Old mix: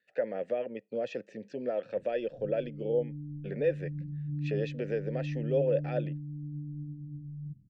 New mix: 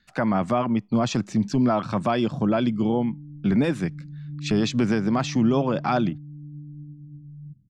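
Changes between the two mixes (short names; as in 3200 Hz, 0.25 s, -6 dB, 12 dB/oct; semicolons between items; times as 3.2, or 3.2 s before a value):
speech: remove vowel filter e; master: add bell 450 Hz -8 dB 0.46 oct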